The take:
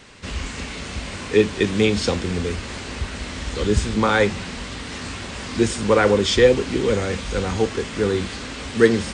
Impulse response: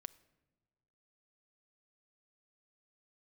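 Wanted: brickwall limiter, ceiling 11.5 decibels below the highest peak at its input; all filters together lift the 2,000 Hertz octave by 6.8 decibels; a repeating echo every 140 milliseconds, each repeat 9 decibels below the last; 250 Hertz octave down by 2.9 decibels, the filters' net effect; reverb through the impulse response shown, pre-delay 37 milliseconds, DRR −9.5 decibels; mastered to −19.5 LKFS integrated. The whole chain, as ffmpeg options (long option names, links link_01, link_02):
-filter_complex "[0:a]equalizer=frequency=250:width_type=o:gain=-4,equalizer=frequency=2000:width_type=o:gain=8.5,alimiter=limit=-10.5dB:level=0:latency=1,aecho=1:1:140|280|420|560:0.355|0.124|0.0435|0.0152,asplit=2[link_01][link_02];[1:a]atrim=start_sample=2205,adelay=37[link_03];[link_02][link_03]afir=irnorm=-1:irlink=0,volume=15dB[link_04];[link_01][link_04]amix=inputs=2:normalize=0,volume=-7dB"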